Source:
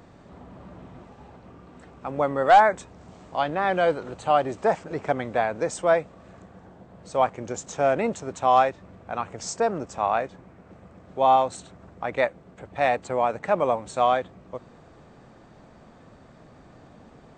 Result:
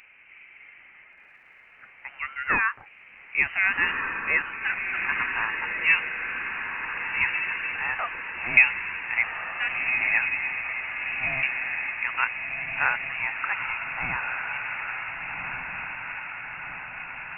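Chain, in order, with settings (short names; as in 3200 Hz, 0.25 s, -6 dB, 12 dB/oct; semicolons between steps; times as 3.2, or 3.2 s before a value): LFO high-pass saw up 0.35 Hz 950–2200 Hz; inverted band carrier 3300 Hz; diffused feedback echo 1.531 s, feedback 64%, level -3.5 dB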